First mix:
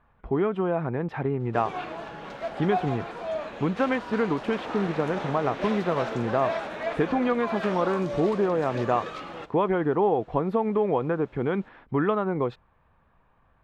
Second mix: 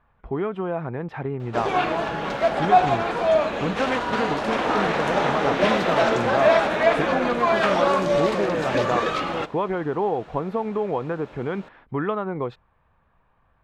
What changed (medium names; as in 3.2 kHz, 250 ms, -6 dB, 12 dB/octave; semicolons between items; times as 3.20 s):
speech: add peaking EQ 270 Hz -2.5 dB 1.5 oct; background +12.0 dB